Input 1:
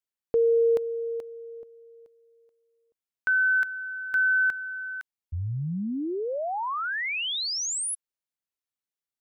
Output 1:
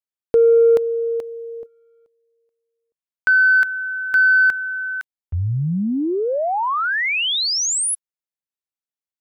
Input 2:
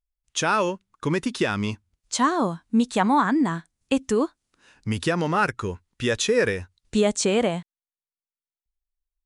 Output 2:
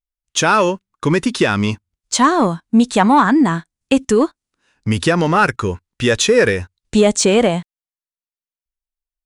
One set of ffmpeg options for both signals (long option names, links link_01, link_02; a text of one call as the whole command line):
ffmpeg -i in.wav -filter_complex "[0:a]agate=range=-15dB:threshold=-50dB:ratio=16:release=37:detection=rms,asplit=2[link_01][link_02];[link_02]asoftclip=type=tanh:threshold=-18dB,volume=-5.5dB[link_03];[link_01][link_03]amix=inputs=2:normalize=0,volume=5.5dB" out.wav